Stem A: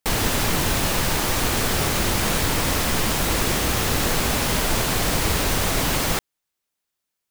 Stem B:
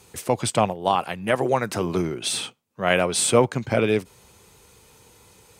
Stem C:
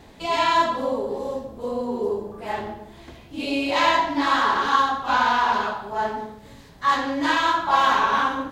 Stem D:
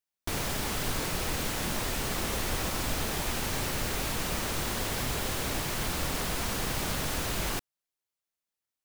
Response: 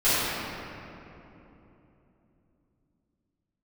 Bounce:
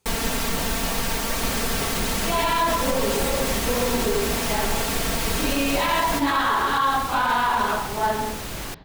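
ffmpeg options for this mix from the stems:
-filter_complex "[0:a]aecho=1:1:4.4:0.79,volume=-5.5dB[link_01];[1:a]volume=-17.5dB[link_02];[2:a]lowpass=frequency=4500:width=0.5412,lowpass=frequency=4500:width=1.3066,adelay=2050,volume=2.5dB[link_03];[3:a]adelay=1150,volume=-1dB[link_04];[link_01][link_02][link_03][link_04]amix=inputs=4:normalize=0,alimiter=limit=-12.5dB:level=0:latency=1:release=49"

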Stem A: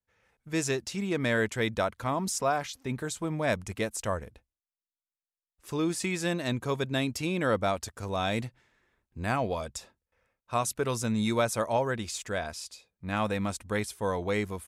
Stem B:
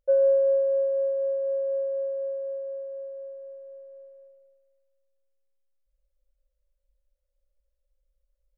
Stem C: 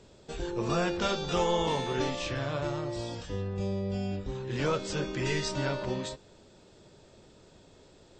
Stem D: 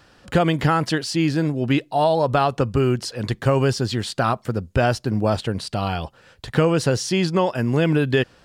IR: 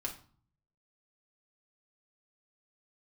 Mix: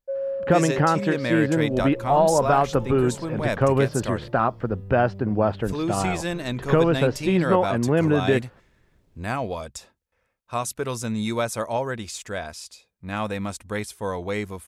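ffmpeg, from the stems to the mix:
-filter_complex "[0:a]volume=1.5dB[link_01];[1:a]volume=-8dB[link_02];[2:a]aemphasis=mode=reproduction:type=riaa,acrusher=bits=9:mix=0:aa=0.000001,adelay=1400,volume=-16dB[link_03];[3:a]lowpass=1700,lowshelf=frequency=110:gain=-10,adelay=150,volume=0.5dB[link_04];[link_01][link_02][link_03][link_04]amix=inputs=4:normalize=0"

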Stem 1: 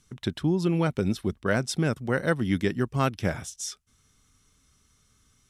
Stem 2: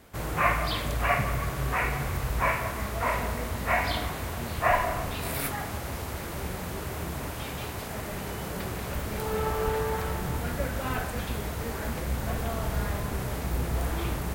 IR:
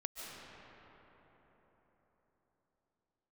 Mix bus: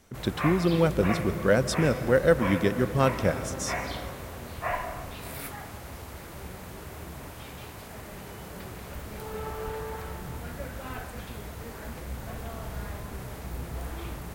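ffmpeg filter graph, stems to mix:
-filter_complex "[0:a]equalizer=frequency=520:width=4.7:gain=9.5,volume=-2.5dB,asplit=2[link_01][link_02];[link_02]volume=-6.5dB[link_03];[1:a]flanger=delay=2.2:depth=9:regen=-81:speed=1:shape=triangular,volume=-2.5dB[link_04];[2:a]atrim=start_sample=2205[link_05];[link_03][link_05]afir=irnorm=-1:irlink=0[link_06];[link_01][link_04][link_06]amix=inputs=3:normalize=0"

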